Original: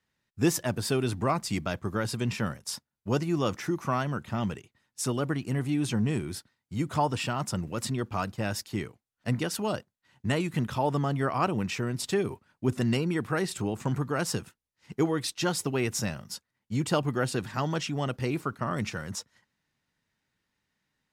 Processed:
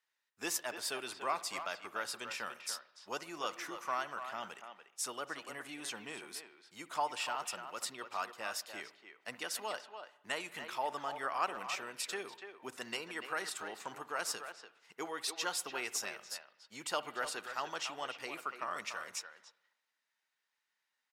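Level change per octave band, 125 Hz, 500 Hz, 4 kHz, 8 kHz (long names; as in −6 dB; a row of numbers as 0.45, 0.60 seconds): −34.0, −12.5, −4.0, −4.5 decibels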